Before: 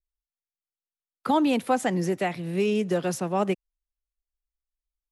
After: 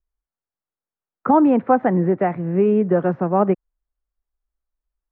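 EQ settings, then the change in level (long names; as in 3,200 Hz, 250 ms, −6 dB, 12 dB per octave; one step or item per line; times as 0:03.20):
low-pass filter 1,600 Hz 24 dB per octave
high-frequency loss of the air 100 metres
+8.0 dB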